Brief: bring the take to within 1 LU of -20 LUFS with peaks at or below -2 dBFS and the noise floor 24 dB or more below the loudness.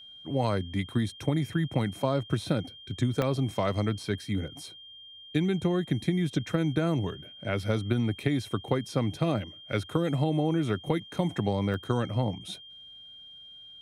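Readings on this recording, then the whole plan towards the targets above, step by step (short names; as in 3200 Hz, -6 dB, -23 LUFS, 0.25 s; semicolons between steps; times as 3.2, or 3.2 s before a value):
dropouts 2; longest dropout 1.1 ms; steady tone 3200 Hz; tone level -46 dBFS; loudness -29.5 LUFS; peak -13.0 dBFS; loudness target -20.0 LUFS
-> interpolate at 3.22/11.74, 1.1 ms; notch 3200 Hz, Q 30; gain +9.5 dB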